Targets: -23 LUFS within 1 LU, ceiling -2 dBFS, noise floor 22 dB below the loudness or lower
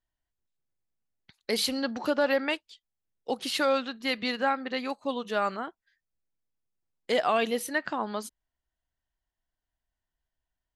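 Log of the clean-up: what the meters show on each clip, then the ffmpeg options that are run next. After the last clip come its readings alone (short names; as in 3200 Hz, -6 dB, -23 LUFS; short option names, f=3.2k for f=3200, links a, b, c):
loudness -29.0 LUFS; peak -14.5 dBFS; loudness target -23.0 LUFS
-> -af "volume=6dB"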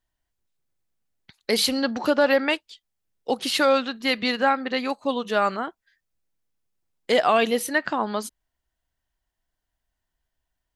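loudness -23.0 LUFS; peak -8.5 dBFS; noise floor -82 dBFS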